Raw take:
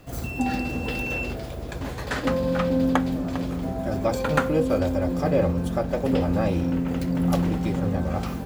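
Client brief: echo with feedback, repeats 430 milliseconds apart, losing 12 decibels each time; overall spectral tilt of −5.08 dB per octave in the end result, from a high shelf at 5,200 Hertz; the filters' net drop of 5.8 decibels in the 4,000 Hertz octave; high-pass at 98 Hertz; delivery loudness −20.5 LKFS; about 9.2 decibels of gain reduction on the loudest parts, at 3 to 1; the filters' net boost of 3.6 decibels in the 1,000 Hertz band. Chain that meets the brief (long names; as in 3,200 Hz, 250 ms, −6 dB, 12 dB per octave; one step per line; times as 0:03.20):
high-pass filter 98 Hz
parametric band 1,000 Hz +5.5 dB
parametric band 4,000 Hz −4.5 dB
high-shelf EQ 5,200 Hz −8.5 dB
downward compressor 3 to 1, threshold −27 dBFS
repeating echo 430 ms, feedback 25%, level −12 dB
level +9.5 dB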